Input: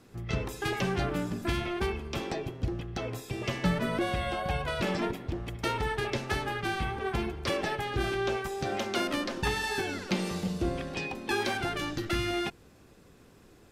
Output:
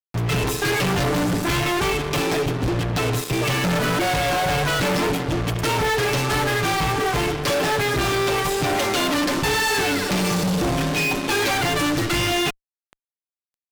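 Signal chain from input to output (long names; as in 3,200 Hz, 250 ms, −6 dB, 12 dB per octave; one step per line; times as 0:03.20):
comb filter 6.8 ms, depth 79%
fuzz pedal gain 42 dB, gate −43 dBFS
level −6 dB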